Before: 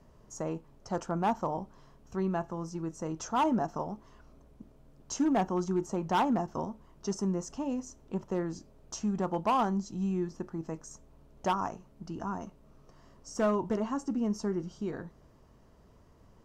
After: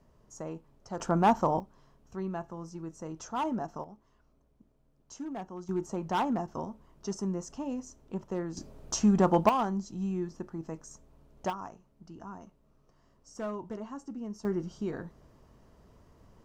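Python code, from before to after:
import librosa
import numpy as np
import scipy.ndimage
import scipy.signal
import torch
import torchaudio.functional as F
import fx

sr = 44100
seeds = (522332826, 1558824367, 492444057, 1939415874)

y = fx.gain(x, sr, db=fx.steps((0.0, -4.5), (1.0, 5.5), (1.6, -4.5), (3.84, -11.5), (5.69, -2.0), (8.57, 8.0), (9.49, -1.5), (11.5, -8.5), (14.45, 1.0)))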